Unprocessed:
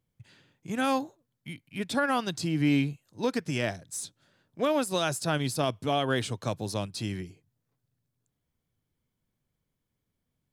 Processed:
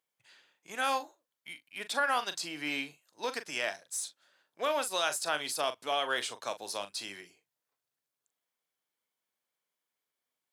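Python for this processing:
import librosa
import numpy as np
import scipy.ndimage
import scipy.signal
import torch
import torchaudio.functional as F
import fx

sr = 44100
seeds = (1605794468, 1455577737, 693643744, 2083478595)

y = scipy.signal.sosfilt(scipy.signal.butter(2, 710.0, 'highpass', fs=sr, output='sos'), x)
y = fx.doubler(y, sr, ms=40.0, db=-11.5)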